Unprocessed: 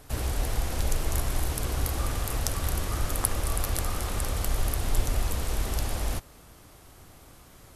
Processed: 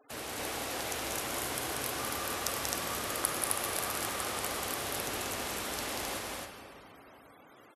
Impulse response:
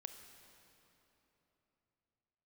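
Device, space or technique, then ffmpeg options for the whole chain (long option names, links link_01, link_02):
stadium PA: -filter_complex "[0:a]highpass=250,equalizer=frequency=2400:width_type=o:width=2.4:gain=4,aecho=1:1:186.6|262.4:0.631|0.794[link_01];[1:a]atrim=start_sample=2205[link_02];[link_01][link_02]afir=irnorm=-1:irlink=0,afftfilt=real='re*gte(hypot(re,im),0.00224)':imag='im*gte(hypot(re,im),0.00224)':win_size=1024:overlap=0.75"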